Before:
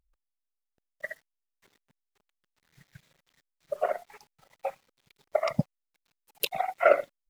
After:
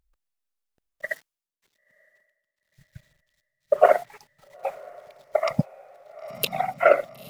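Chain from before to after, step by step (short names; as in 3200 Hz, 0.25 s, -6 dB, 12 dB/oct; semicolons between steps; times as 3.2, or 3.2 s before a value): diffused feedback echo 0.966 s, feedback 54%, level -14 dB; 1.09–4.09 three-band expander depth 100%; gain +3.5 dB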